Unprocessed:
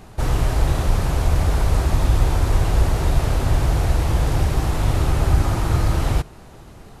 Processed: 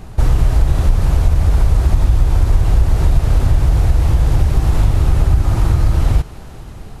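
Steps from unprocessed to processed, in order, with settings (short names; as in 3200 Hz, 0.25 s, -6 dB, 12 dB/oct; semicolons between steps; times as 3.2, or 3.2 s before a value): compressor, threshold -19 dBFS, peak gain reduction 9.5 dB; low shelf 150 Hz +10 dB; thinning echo 0.213 s, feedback 83%, level -19 dB; gain +3 dB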